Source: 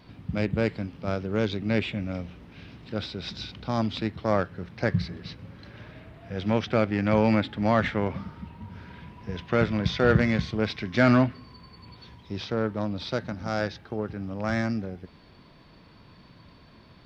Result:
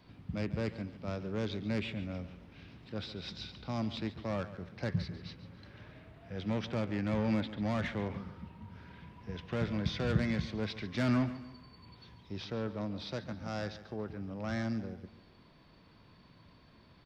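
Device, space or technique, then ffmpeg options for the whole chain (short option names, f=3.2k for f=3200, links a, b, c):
one-band saturation: -filter_complex "[0:a]asettb=1/sr,asplit=3[a][b][c];[a]atrim=end=6.824[d];[b]atrim=start=6.82:end=7.58,asetpts=PTS-STARTPTS,afade=t=in:d=0.004:c=qsin,afade=t=out:st=0.756:d=0.004:c=qsin,lowpass=5.6k[e];[c]atrim=start=7.576[f];[d][e]acrossfade=d=0.004:c1=hsin:c2=qsin[g];[g][f]acrossfade=d=0.004:c1=qsin:c2=hsin,acrossover=split=260|3500[h][i][j];[i]asoftclip=type=tanh:threshold=-25.5dB[k];[h][k][j]amix=inputs=3:normalize=0,aecho=1:1:141|282|423|564:0.188|0.0735|0.0287|0.0112,volume=-7.5dB"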